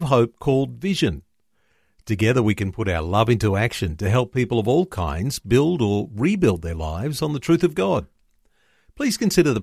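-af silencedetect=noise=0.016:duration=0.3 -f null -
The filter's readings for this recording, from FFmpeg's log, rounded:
silence_start: 1.19
silence_end: 2.07 | silence_duration: 0.88
silence_start: 8.05
silence_end: 8.98 | silence_duration: 0.93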